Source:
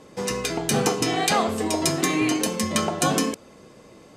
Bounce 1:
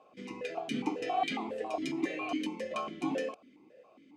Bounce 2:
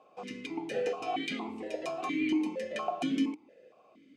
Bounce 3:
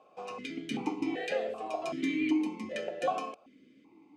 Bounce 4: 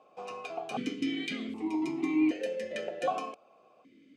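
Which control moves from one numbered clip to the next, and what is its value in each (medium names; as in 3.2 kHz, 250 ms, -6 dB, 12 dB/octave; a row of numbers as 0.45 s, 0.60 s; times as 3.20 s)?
stepped vowel filter, rate: 7.3 Hz, 4.3 Hz, 2.6 Hz, 1.3 Hz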